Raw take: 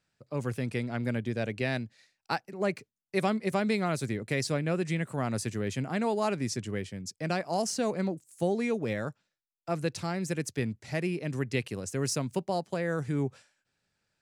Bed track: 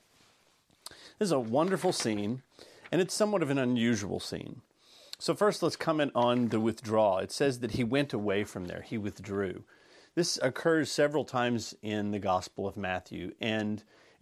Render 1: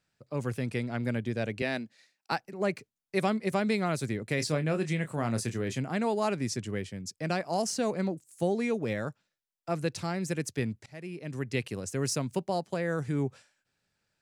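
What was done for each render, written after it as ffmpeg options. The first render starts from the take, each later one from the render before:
-filter_complex "[0:a]asettb=1/sr,asplit=3[s0][s1][s2];[s0]atrim=end=1.624[s3];[s1]atrim=start=1.62:end=2.32,asetpts=PTS-STARTPTS,afade=t=in:d=0.004:c=qsin,afade=t=out:st=0.696:d=0.004:c=qsin,highpass=f=170:w=0.5412,highpass=f=170:w=1.3066[s4];[s2]atrim=start=2.316[s5];[s3][s4]acrossfade=d=0.004:c1=hsin:c2=qsin[s6];[s6][s5]acrossfade=d=0.004:c1=qsin:c2=hsin,asettb=1/sr,asplit=3[s7][s8][s9];[s7]atrim=end=4.364[s10];[s8]atrim=start=4.36:end=5.79,asetpts=PTS-STARTPTS,afade=t=in:d=0.004:c=qsin,afade=t=out:st=1.426:d=0.004:c=qsin,asplit=2[s11][s12];[s12]adelay=26,volume=0.335[s13];[s11][s13]amix=inputs=2:normalize=0,atrim=end_sample=63063[s14];[s9]atrim=start=5.786[s15];[s10][s14]acrossfade=d=0.004:c1=hsin:c2=qsin[s16];[s16][s15]acrossfade=d=0.004:c1=qsin:c2=hsin,asplit=2[s17][s18];[s17]atrim=end=10.86,asetpts=PTS-STARTPTS,afade=t=out:st=10.856:d=0.004:c=hsin:silence=0.0944061[s19];[s18]atrim=start=10.86,asetpts=PTS-STARTPTS,afade=t=in:d=0.78:silence=0.0944061[s20];[s19][s20]concat=n=2:v=0:a=1"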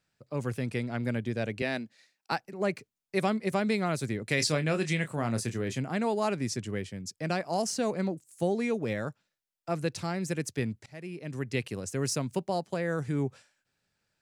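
-filter_complex "[0:a]asettb=1/sr,asplit=3[s0][s1][s2];[s0]atrim=end=4.274[s3];[s1]atrim=start=4.27:end=5.08,asetpts=PTS-STARTPTS,afade=t=in:d=0.004:c=qsin,afade=t=out:st=0.806:d=0.004:c=qsin,equalizer=f=4600:w=0.35:g=6.5[s4];[s2]atrim=start=5.076[s5];[s3][s4]acrossfade=d=0.004:c1=hsin:c2=qsin[s6];[s6][s5]acrossfade=d=0.004:c1=qsin:c2=hsin"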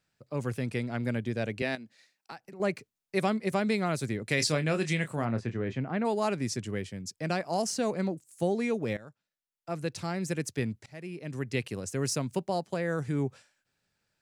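-filter_complex "[0:a]asettb=1/sr,asplit=3[s0][s1][s2];[s0]atrim=end=1.754[s3];[s1]atrim=start=1.75:end=2.6,asetpts=PTS-STARTPTS,afade=t=in:d=0.004:c=qsin,afade=t=out:st=0.846:d=0.004:c=qsin,acompressor=threshold=0.00708:ratio=3:attack=3.2:release=140:knee=1:detection=peak[s4];[s2]atrim=start=2.596[s5];[s3][s4]acrossfade=d=0.004:c1=hsin:c2=qsin[s6];[s6][s5]acrossfade=d=0.004:c1=qsin:c2=hsin,asplit=3[s7][s8][s9];[s7]afade=t=out:st=5.24:d=0.02[s10];[s8]lowpass=2300,afade=t=in:st=5.24:d=0.02,afade=t=out:st=6.04:d=0.02[s11];[s9]afade=t=in:st=6.04:d=0.02[s12];[s10][s11][s12]amix=inputs=3:normalize=0,asplit=2[s13][s14];[s13]atrim=end=8.97,asetpts=PTS-STARTPTS,afade=t=out:st=8.966:d=0.004:c=hsin:silence=0.141254[s15];[s14]atrim=start=8.97,asetpts=PTS-STARTPTS,afade=t=in:d=1.24:silence=0.141254[s16];[s15][s16]concat=n=2:v=0:a=1"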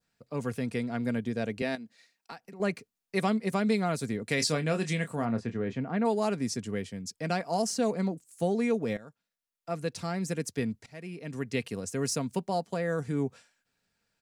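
-af "aecho=1:1:4.3:0.36,adynamicequalizer=threshold=0.00398:dfrequency=2400:dqfactor=1.1:tfrequency=2400:tqfactor=1.1:attack=5:release=100:ratio=0.375:range=2:mode=cutabove:tftype=bell"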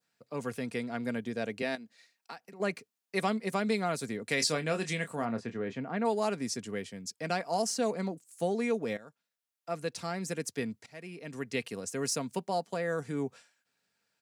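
-af "highpass=91,lowshelf=f=240:g=-8.5"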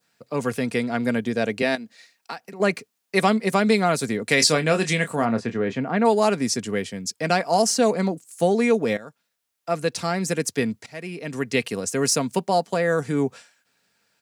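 -af "volume=3.55"

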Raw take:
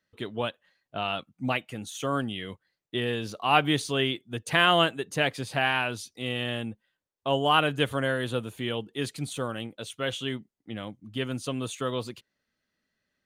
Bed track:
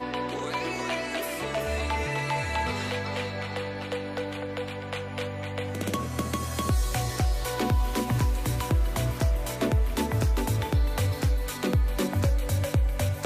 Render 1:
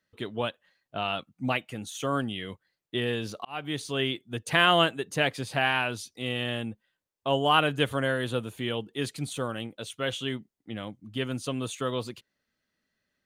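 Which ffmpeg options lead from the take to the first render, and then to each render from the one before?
-filter_complex "[0:a]asplit=2[s0][s1];[s0]atrim=end=3.45,asetpts=PTS-STARTPTS,afade=t=out:st=3.446:d=0.004:c=hsin[s2];[s1]atrim=start=3.45,asetpts=PTS-STARTPTS,afade=t=in:d=0.96:c=qsin[s3];[s2][s3]concat=n=2:v=0:a=1"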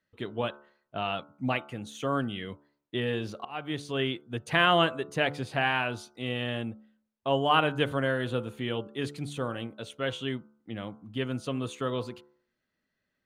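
-af "highshelf=f=4500:g=-11,bandreject=f=72.42:t=h:w=4,bandreject=f=144.84:t=h:w=4,bandreject=f=217.26:t=h:w=4,bandreject=f=289.68:t=h:w=4,bandreject=f=362.1:t=h:w=4,bandreject=f=434.52:t=h:w=4,bandreject=f=506.94:t=h:w=4,bandreject=f=579.36:t=h:w=4,bandreject=f=651.78:t=h:w=4,bandreject=f=724.2:t=h:w=4,bandreject=f=796.62:t=h:w=4,bandreject=f=869.04:t=h:w=4,bandreject=f=941.46:t=h:w=4,bandreject=f=1013.88:t=h:w=4,bandreject=f=1086.3:t=h:w=4,bandreject=f=1158.72:t=h:w=4,bandreject=f=1231.14:t=h:w=4,bandreject=f=1303.56:t=h:w=4,bandreject=f=1375.98:t=h:w=4,bandreject=f=1448.4:t=h:w=4,bandreject=f=1520.82:t=h:w=4"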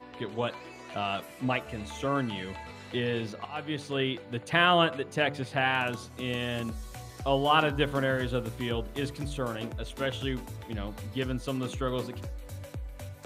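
-filter_complex "[1:a]volume=0.178[s0];[0:a][s0]amix=inputs=2:normalize=0"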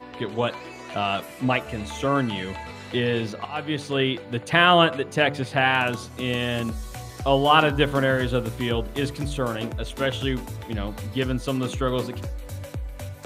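-af "volume=2.11,alimiter=limit=0.708:level=0:latency=1"

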